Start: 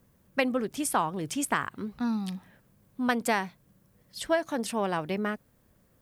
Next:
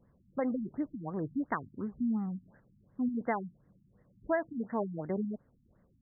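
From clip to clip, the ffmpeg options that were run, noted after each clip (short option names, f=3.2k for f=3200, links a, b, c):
-filter_complex "[0:a]asplit=2[a][b];[b]alimiter=limit=-22.5dB:level=0:latency=1:release=117,volume=2dB[c];[a][c]amix=inputs=2:normalize=0,afftfilt=real='re*lt(b*sr/1024,280*pow(2200/280,0.5+0.5*sin(2*PI*2.8*pts/sr)))':imag='im*lt(b*sr/1024,280*pow(2200/280,0.5+0.5*sin(2*PI*2.8*pts/sr)))':win_size=1024:overlap=0.75,volume=-8.5dB"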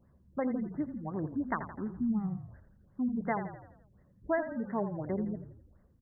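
-filter_complex "[0:a]equalizer=f=72:w=5.7:g=14,bandreject=f=480:w=14,asplit=2[a][b];[b]asplit=6[c][d][e][f][g][h];[c]adelay=84,afreqshift=-33,volume=-10dB[i];[d]adelay=168,afreqshift=-66,volume=-15.7dB[j];[e]adelay=252,afreqshift=-99,volume=-21.4dB[k];[f]adelay=336,afreqshift=-132,volume=-27dB[l];[g]adelay=420,afreqshift=-165,volume=-32.7dB[m];[h]adelay=504,afreqshift=-198,volume=-38.4dB[n];[i][j][k][l][m][n]amix=inputs=6:normalize=0[o];[a][o]amix=inputs=2:normalize=0"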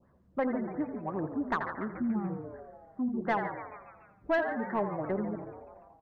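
-filter_complex "[0:a]asplit=6[a][b][c][d][e][f];[b]adelay=144,afreqshift=120,volume=-15dB[g];[c]adelay=288,afreqshift=240,volume=-20.2dB[h];[d]adelay=432,afreqshift=360,volume=-25.4dB[i];[e]adelay=576,afreqshift=480,volume=-30.6dB[j];[f]adelay=720,afreqshift=600,volume=-35.8dB[k];[a][g][h][i][j][k]amix=inputs=6:normalize=0,adynamicequalizer=threshold=0.00282:dfrequency=1700:dqfactor=1.9:tfrequency=1700:tqfactor=1.9:attack=5:release=100:ratio=0.375:range=2.5:mode=boostabove:tftype=bell,asplit=2[l][m];[m]highpass=f=720:p=1,volume=14dB,asoftclip=type=tanh:threshold=-17.5dB[n];[l][n]amix=inputs=2:normalize=0,lowpass=f=1.5k:p=1,volume=-6dB"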